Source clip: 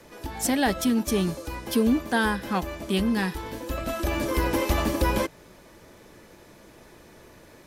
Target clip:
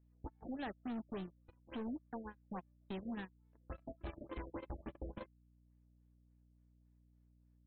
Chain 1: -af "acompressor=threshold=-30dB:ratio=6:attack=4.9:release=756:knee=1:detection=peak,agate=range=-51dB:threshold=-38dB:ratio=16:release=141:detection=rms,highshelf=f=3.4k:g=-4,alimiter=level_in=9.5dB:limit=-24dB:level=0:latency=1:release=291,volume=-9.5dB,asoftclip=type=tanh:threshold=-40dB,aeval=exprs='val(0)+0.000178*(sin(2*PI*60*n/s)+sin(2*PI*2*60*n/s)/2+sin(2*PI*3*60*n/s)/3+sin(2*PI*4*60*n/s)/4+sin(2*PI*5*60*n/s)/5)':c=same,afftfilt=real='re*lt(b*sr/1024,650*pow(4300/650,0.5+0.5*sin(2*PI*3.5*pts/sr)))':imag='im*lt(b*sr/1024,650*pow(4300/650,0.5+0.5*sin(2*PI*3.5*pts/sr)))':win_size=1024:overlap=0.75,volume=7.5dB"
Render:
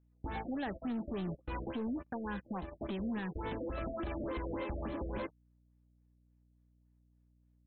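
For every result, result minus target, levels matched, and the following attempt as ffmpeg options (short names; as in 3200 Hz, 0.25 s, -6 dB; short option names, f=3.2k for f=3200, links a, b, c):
compressor: peak gain reduction -6 dB; soft clip: distortion -6 dB
-af "acompressor=threshold=-37.5dB:ratio=6:attack=4.9:release=756:knee=1:detection=peak,agate=range=-51dB:threshold=-38dB:ratio=16:release=141:detection=rms,highshelf=f=3.4k:g=-4,alimiter=level_in=9.5dB:limit=-24dB:level=0:latency=1:release=291,volume=-9.5dB,asoftclip=type=tanh:threshold=-40dB,aeval=exprs='val(0)+0.000178*(sin(2*PI*60*n/s)+sin(2*PI*2*60*n/s)/2+sin(2*PI*3*60*n/s)/3+sin(2*PI*4*60*n/s)/4+sin(2*PI*5*60*n/s)/5)':c=same,afftfilt=real='re*lt(b*sr/1024,650*pow(4300/650,0.5+0.5*sin(2*PI*3.5*pts/sr)))':imag='im*lt(b*sr/1024,650*pow(4300/650,0.5+0.5*sin(2*PI*3.5*pts/sr)))':win_size=1024:overlap=0.75,volume=7.5dB"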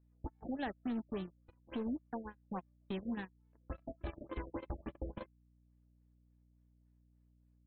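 soft clip: distortion -6 dB
-af "acompressor=threshold=-37.5dB:ratio=6:attack=4.9:release=756:knee=1:detection=peak,agate=range=-51dB:threshold=-38dB:ratio=16:release=141:detection=rms,highshelf=f=3.4k:g=-4,alimiter=level_in=9.5dB:limit=-24dB:level=0:latency=1:release=291,volume=-9.5dB,asoftclip=type=tanh:threshold=-46.5dB,aeval=exprs='val(0)+0.000178*(sin(2*PI*60*n/s)+sin(2*PI*2*60*n/s)/2+sin(2*PI*3*60*n/s)/3+sin(2*PI*4*60*n/s)/4+sin(2*PI*5*60*n/s)/5)':c=same,afftfilt=real='re*lt(b*sr/1024,650*pow(4300/650,0.5+0.5*sin(2*PI*3.5*pts/sr)))':imag='im*lt(b*sr/1024,650*pow(4300/650,0.5+0.5*sin(2*PI*3.5*pts/sr)))':win_size=1024:overlap=0.75,volume=7.5dB"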